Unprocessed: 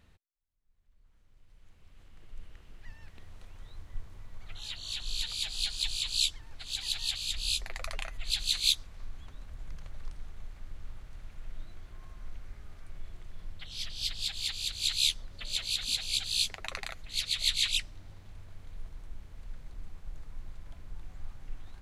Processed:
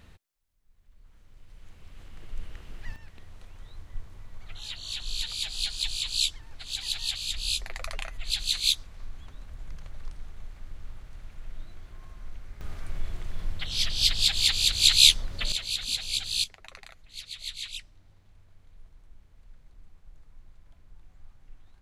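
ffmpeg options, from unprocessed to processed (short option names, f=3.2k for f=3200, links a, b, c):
-af "asetnsamples=n=441:p=0,asendcmd='2.96 volume volume 2dB;12.61 volume volume 11dB;15.52 volume volume 1.5dB;16.44 volume volume -9dB',volume=9dB"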